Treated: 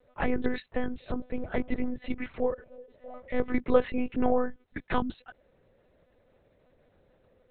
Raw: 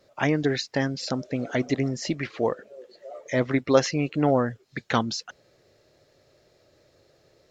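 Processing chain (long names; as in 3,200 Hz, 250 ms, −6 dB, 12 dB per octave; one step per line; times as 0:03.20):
low-pass filter 1,900 Hz 6 dB per octave
one-pitch LPC vocoder at 8 kHz 250 Hz
level −2.5 dB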